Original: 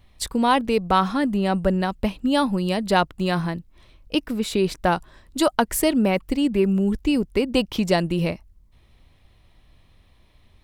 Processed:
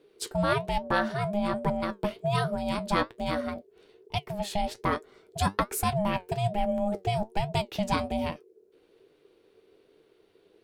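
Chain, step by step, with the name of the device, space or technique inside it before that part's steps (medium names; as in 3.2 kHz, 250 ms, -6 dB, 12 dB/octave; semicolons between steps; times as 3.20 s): alien voice (ring modulator 410 Hz; flange 1.2 Hz, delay 6.3 ms, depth 5 ms, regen +65%)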